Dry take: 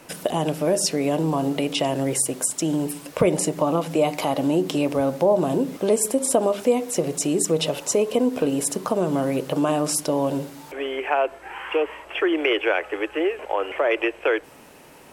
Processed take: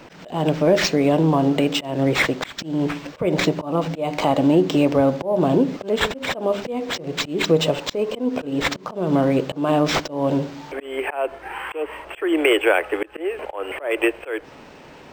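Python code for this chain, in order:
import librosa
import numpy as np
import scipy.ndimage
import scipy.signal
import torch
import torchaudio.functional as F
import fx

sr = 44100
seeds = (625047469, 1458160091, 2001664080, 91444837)

y = fx.low_shelf(x, sr, hz=200.0, db=2.5)
y = fx.auto_swell(y, sr, attack_ms=231.0)
y = np.interp(np.arange(len(y)), np.arange(len(y))[::4], y[::4])
y = F.gain(torch.from_numpy(y), 4.5).numpy()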